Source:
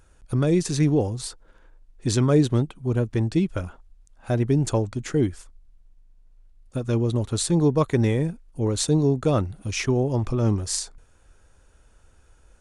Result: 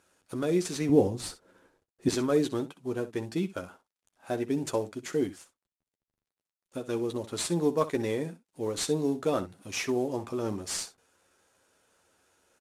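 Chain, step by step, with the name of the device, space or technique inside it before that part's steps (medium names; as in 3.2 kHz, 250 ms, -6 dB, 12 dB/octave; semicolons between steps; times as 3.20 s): early wireless headset (high-pass 250 Hz 12 dB/octave; CVSD coder 64 kbps); 0.89–2.09 s: bass shelf 430 Hz +12 dB; early reflections 11 ms -7.5 dB, 64 ms -14.5 dB; trim -5 dB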